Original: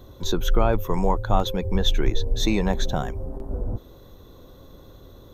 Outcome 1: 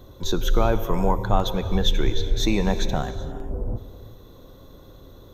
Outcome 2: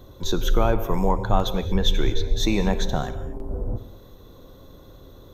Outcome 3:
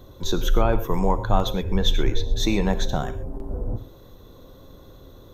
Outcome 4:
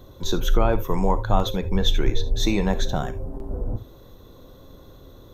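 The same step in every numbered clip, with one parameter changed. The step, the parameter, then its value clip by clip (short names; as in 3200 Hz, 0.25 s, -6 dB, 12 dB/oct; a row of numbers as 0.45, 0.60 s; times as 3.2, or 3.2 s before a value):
non-linear reverb, gate: 0.43, 0.26, 0.15, 0.1 s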